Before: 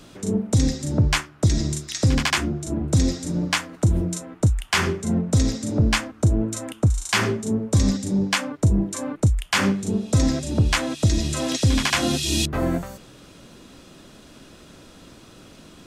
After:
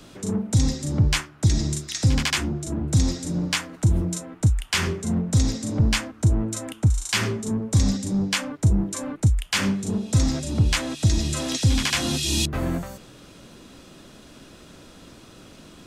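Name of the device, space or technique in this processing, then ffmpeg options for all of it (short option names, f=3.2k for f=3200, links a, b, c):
one-band saturation: -filter_complex "[0:a]acrossover=split=210|2100[a][b][c];[b]asoftclip=type=tanh:threshold=-28dB[d];[a][d][c]amix=inputs=3:normalize=0"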